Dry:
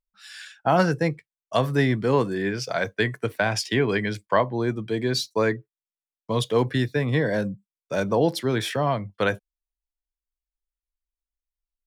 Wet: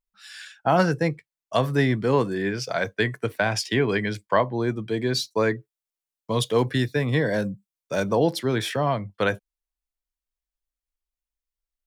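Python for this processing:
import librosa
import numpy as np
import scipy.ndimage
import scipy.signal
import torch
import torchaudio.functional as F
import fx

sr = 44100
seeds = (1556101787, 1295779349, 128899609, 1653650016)

y = fx.high_shelf(x, sr, hz=4700.0, db=5.0, at=(5.56, 8.24))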